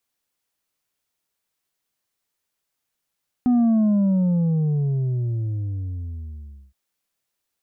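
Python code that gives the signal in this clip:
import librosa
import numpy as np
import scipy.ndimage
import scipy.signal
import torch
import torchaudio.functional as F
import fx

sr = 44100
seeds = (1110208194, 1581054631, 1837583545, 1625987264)

y = fx.sub_drop(sr, level_db=-15.0, start_hz=250.0, length_s=3.27, drive_db=4, fade_s=3.15, end_hz=65.0)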